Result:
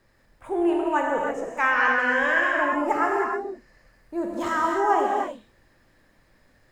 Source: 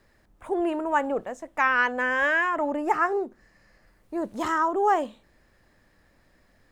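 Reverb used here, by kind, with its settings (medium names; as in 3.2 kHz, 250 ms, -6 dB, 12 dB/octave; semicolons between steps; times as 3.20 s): gated-style reverb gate 340 ms flat, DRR -2 dB; trim -2 dB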